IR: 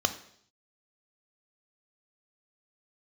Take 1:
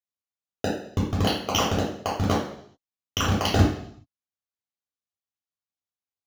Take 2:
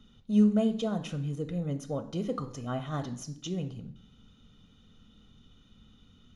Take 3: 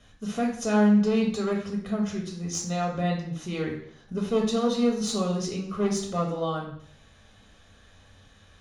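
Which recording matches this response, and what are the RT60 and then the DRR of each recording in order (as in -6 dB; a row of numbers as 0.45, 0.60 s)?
2; 0.65, 0.65, 0.65 s; -6.5, 8.5, -0.5 dB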